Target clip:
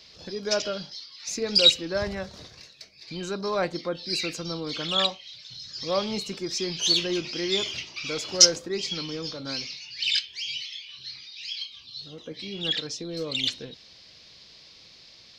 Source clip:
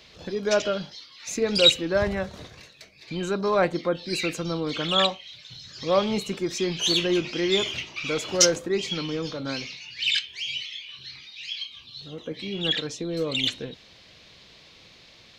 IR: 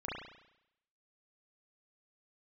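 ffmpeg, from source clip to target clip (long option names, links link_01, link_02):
-af "equalizer=frequency=5000:width_type=o:width=0.63:gain=12.5,volume=-5dB"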